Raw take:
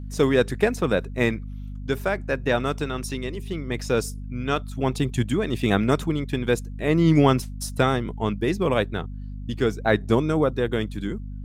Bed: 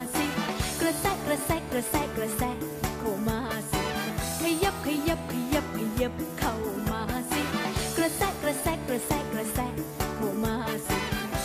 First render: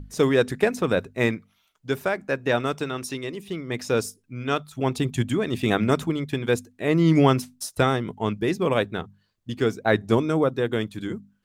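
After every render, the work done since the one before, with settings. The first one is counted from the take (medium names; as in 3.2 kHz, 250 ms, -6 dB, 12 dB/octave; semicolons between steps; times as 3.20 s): hum notches 50/100/150/200/250 Hz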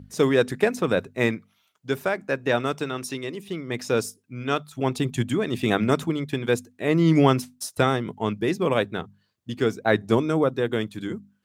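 high-pass 93 Hz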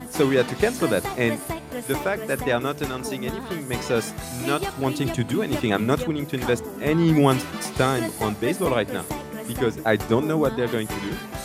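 add bed -3 dB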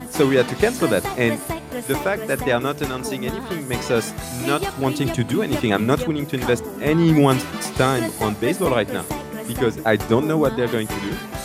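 trim +3 dB; peak limiter -3 dBFS, peak gain reduction 2.5 dB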